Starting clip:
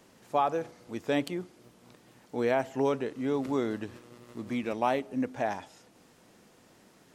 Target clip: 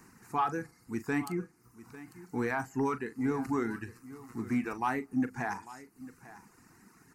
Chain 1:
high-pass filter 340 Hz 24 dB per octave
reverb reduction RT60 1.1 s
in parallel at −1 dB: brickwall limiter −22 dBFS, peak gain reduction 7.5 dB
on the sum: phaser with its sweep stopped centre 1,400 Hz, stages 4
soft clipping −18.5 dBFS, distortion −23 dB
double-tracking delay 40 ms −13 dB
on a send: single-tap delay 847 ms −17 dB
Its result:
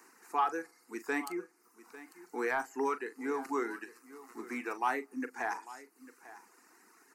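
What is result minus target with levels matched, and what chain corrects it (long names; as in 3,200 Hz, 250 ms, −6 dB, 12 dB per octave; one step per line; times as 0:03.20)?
250 Hz band −5.5 dB
reverb reduction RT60 1.1 s
in parallel at −1 dB: brickwall limiter −22 dBFS, peak gain reduction 7.5 dB
on the sum: phaser with its sweep stopped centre 1,400 Hz, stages 4
soft clipping −18.5 dBFS, distortion −24 dB
double-tracking delay 40 ms −13 dB
on a send: single-tap delay 847 ms −17 dB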